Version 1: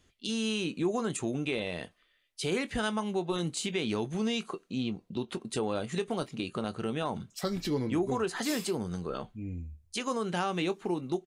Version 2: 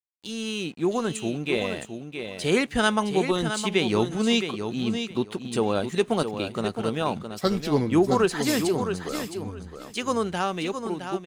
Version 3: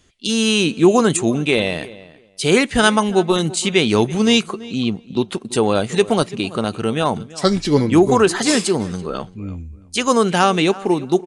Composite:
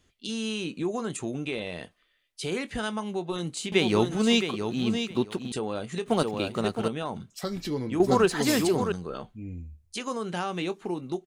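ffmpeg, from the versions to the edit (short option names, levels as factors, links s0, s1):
-filter_complex "[1:a]asplit=3[s0][s1][s2];[0:a]asplit=4[s3][s4][s5][s6];[s3]atrim=end=3.722[s7];[s0]atrim=start=3.718:end=5.522[s8];[s4]atrim=start=5.518:end=6.062[s9];[s1]atrim=start=6.058:end=6.882[s10];[s5]atrim=start=6.878:end=8.002[s11];[s2]atrim=start=7.998:end=8.922[s12];[s6]atrim=start=8.918[s13];[s7][s8]acrossfade=d=0.004:c1=hsin:c2=hsin[s14];[s14][s9]acrossfade=d=0.004:c1=hsin:c2=hsin[s15];[s15][s10]acrossfade=d=0.004:c1=hsin:c2=hsin[s16];[s16][s11]acrossfade=d=0.004:c1=hsin:c2=hsin[s17];[s17][s12]acrossfade=d=0.004:c1=hsin:c2=hsin[s18];[s18][s13]acrossfade=d=0.004:c1=hsin:c2=hsin"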